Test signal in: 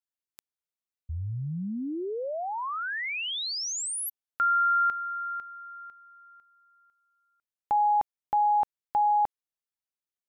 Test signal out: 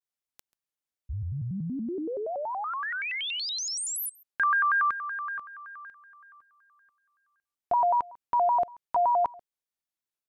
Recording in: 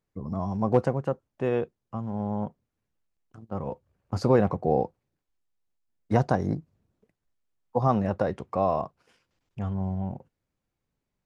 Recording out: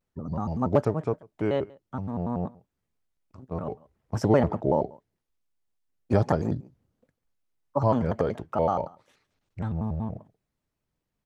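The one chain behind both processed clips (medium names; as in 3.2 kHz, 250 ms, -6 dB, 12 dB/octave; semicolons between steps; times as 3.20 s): on a send: delay 140 ms -23.5 dB; on the sum: vibrato with a chosen wave square 5.3 Hz, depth 250 cents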